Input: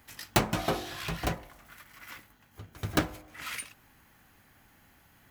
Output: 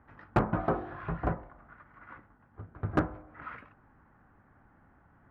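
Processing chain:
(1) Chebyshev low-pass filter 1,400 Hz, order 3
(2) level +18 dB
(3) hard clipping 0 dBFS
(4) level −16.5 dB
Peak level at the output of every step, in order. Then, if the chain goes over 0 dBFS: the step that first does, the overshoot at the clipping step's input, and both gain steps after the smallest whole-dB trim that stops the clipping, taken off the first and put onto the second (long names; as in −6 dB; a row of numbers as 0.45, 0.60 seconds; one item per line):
−10.5, +7.5, 0.0, −16.5 dBFS
step 2, 7.5 dB
step 2 +10 dB, step 4 −8.5 dB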